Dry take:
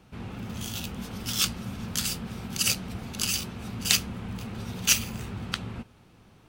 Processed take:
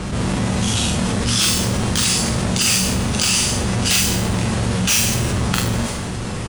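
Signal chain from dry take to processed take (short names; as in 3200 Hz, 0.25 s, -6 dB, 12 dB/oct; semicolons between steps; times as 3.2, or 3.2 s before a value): half-waves squared off; downsampling 22050 Hz; hard clip -16.5 dBFS, distortion -12 dB; doubler 43 ms -3 dB; on a send at -7 dB: RIAA curve recording + reverb RT60 0.65 s, pre-delay 8 ms; on the sum: fast leveller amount 70%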